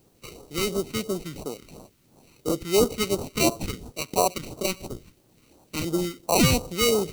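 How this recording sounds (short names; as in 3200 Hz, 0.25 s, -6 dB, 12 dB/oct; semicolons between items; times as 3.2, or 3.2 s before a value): aliases and images of a low sample rate 1700 Hz, jitter 0%; phasing stages 2, 2.9 Hz, lowest notch 670–2100 Hz; a quantiser's noise floor 12-bit, dither triangular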